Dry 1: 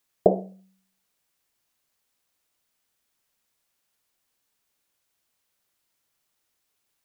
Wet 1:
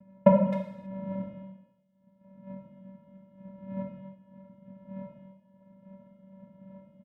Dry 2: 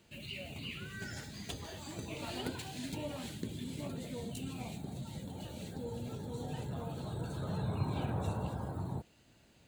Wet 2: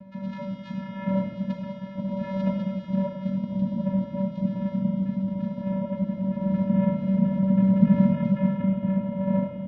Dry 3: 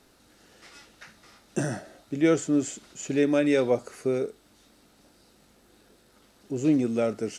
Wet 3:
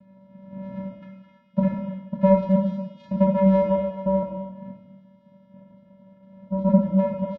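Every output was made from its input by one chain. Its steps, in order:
random holes in the spectrogram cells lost 30%; wind noise 430 Hz -48 dBFS; treble shelf 4.8 kHz -9.5 dB; vocoder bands 4, square 192 Hz; distance through air 290 m; speakerphone echo 260 ms, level -13 dB; gated-style reverb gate 350 ms falling, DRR 0.5 dB; peak normalisation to -6 dBFS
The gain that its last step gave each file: +2.0 dB, +17.5 dB, +5.5 dB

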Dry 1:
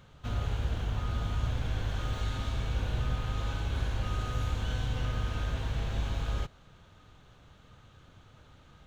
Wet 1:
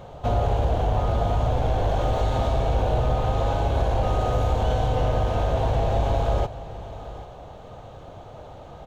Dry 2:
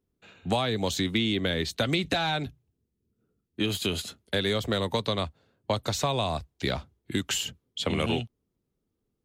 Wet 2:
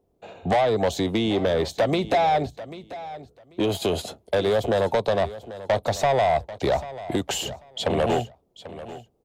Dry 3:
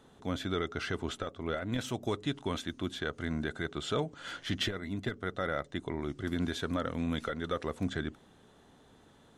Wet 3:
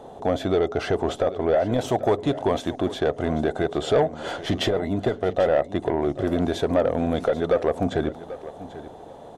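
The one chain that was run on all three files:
FFT filter 250 Hz 0 dB, 710 Hz +15 dB, 1.4 kHz -5 dB; in parallel at +1 dB: compression, threshold -31 dBFS; on the sum: saturation -16.5 dBFS; feedback delay 790 ms, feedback 18%, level -15.5 dB; normalise loudness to -24 LUFS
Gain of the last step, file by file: +5.0 dB, +1.0 dB, +5.0 dB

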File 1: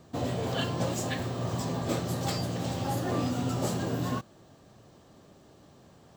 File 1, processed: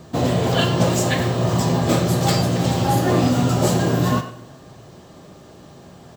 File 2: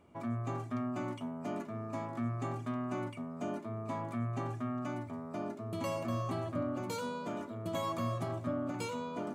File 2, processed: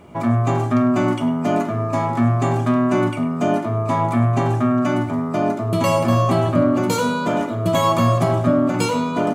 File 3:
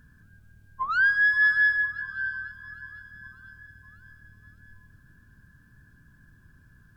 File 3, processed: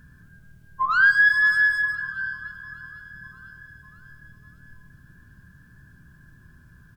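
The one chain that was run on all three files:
speakerphone echo 100 ms, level -12 dB; two-slope reverb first 0.5 s, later 1.9 s, DRR 7 dB; normalise loudness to -19 LUFS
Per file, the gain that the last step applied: +11.0 dB, +17.5 dB, +4.0 dB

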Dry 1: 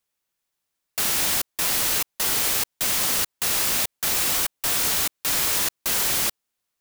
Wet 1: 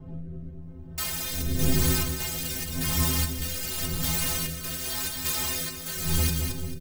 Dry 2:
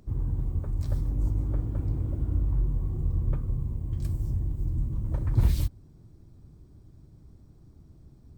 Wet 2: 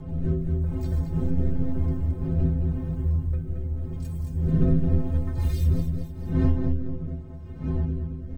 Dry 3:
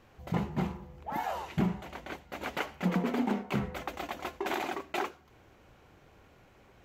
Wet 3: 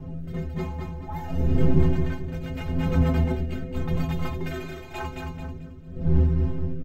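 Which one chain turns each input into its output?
wind noise 140 Hz -25 dBFS; inharmonic resonator 77 Hz, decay 0.58 s, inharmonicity 0.03; on a send: feedback delay 220 ms, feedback 42%, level -6 dB; on the sum: rotary cabinet horn 0.9 Hz; normalise loudness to -27 LUFS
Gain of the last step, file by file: +6.5 dB, +11.5 dB, +12.5 dB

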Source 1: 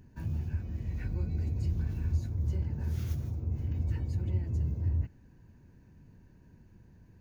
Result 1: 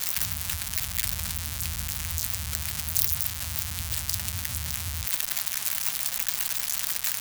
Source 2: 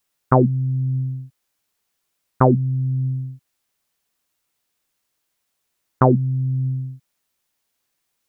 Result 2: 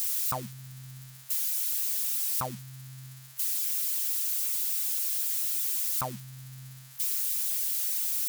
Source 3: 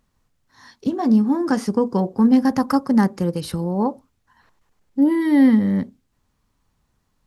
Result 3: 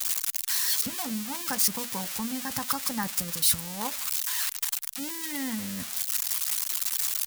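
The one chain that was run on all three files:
zero-crossing glitches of -10 dBFS; harmonic-percussive split harmonic -9 dB; peaking EQ 370 Hz -14.5 dB 1.2 oct; normalise loudness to -27 LUFS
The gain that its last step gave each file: +3.0 dB, -13.0 dB, -3.5 dB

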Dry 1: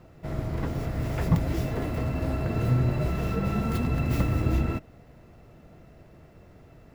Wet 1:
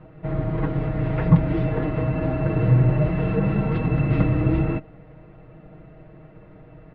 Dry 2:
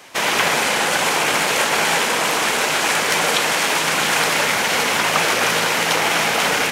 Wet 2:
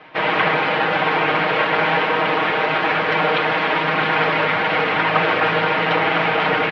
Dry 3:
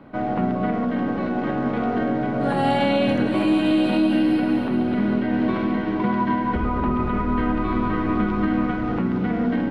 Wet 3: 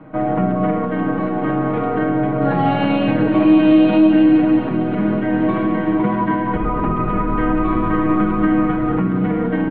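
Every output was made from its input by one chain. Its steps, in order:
Bessel low-pass 2.1 kHz, order 8; comb 6.4 ms, depth 79%; peak normalisation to -3 dBFS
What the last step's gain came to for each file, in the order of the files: +4.0 dB, +0.5 dB, +3.0 dB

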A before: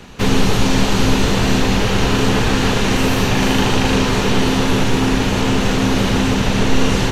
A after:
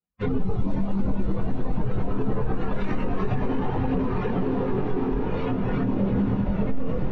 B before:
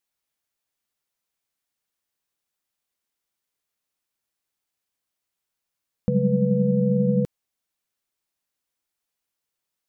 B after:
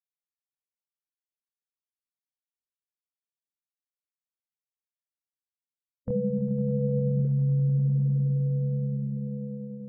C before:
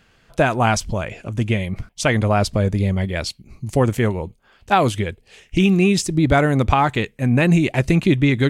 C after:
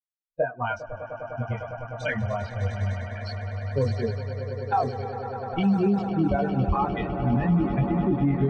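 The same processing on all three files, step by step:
expander on every frequency bin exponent 3; low-pass that closes with the level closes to 880 Hz, closed at -20.5 dBFS; on a send: echo with a slow build-up 101 ms, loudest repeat 8, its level -15.5 dB; on the sum: level-controlled noise filter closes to 1.6 kHz, open at -15 dBFS; chorus voices 2, 0.25 Hz, delay 23 ms, depth 1.8 ms; peak limiter -19 dBFS; normalise loudness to -27 LUFS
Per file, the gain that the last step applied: +4.0 dB, 0.0 dB, +4.5 dB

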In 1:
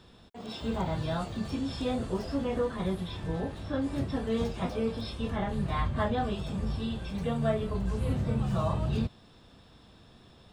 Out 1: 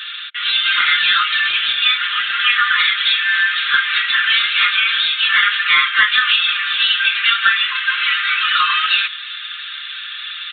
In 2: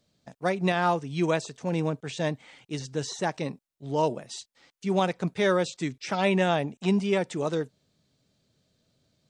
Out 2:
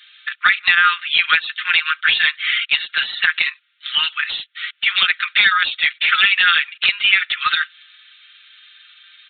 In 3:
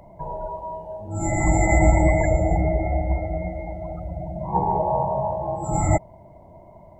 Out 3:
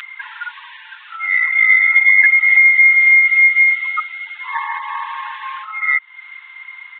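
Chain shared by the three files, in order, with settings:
steep high-pass 1.3 kHz 72 dB/octave; treble shelf 2.2 kHz +10 dB; comb 5.7 ms, depth 92%; compression 6:1, threshold -37 dBFS; saturation -29 dBFS; distance through air 59 m; resampled via 8 kHz; peak normalisation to -1.5 dBFS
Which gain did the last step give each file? +29.0 dB, +27.5 dB, +31.0 dB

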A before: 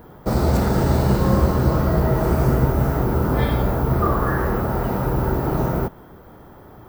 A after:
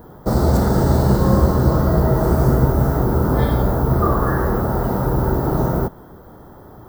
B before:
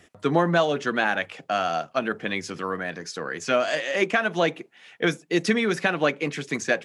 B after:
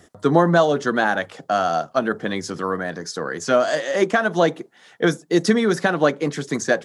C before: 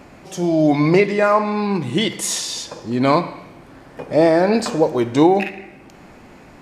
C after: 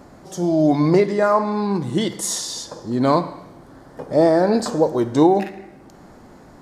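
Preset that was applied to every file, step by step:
peaking EQ 2.5 kHz -14 dB 0.63 oct; peak normalisation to -3 dBFS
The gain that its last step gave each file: +2.5 dB, +5.5 dB, -1.0 dB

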